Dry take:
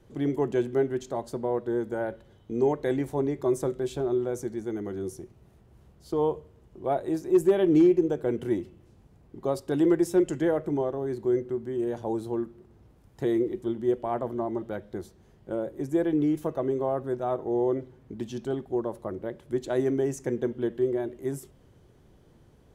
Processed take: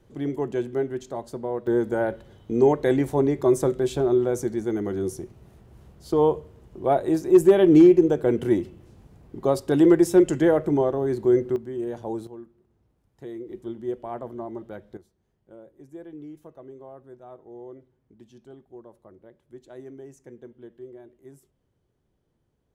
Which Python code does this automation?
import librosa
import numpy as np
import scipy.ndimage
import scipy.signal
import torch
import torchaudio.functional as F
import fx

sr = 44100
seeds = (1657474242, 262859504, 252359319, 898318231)

y = fx.gain(x, sr, db=fx.steps((0.0, -1.0), (1.67, 6.0), (11.56, -1.0), (12.27, -11.5), (13.49, -4.5), (14.97, -16.0)))